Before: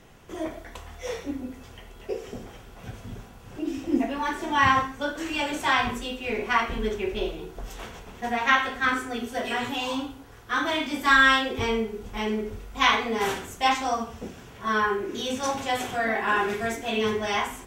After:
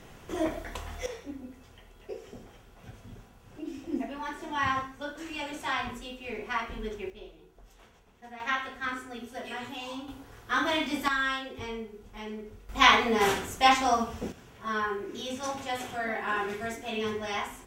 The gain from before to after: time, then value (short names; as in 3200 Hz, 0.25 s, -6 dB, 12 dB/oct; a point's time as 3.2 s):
+2.5 dB
from 1.06 s -8.5 dB
from 7.1 s -18 dB
from 8.4 s -9.5 dB
from 10.08 s -1.5 dB
from 11.08 s -11.5 dB
from 12.69 s +1.5 dB
from 14.32 s -6.5 dB